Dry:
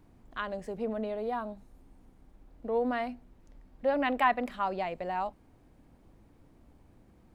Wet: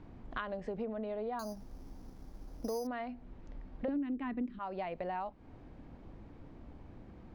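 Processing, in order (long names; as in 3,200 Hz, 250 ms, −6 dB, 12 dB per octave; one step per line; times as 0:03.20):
high-frequency loss of the air 160 metres
0:01.39–0:02.87: bad sample-rate conversion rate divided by 8×, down none, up hold
0:03.88–0:04.59: low shelf with overshoot 450 Hz +12.5 dB, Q 3
downward compressor 8 to 1, threshold −43 dBFS, peak gain reduction 30 dB
level +7.5 dB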